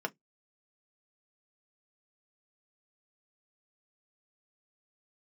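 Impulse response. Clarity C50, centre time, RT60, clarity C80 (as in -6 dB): 31.0 dB, 3 ms, 0.15 s, 47.0 dB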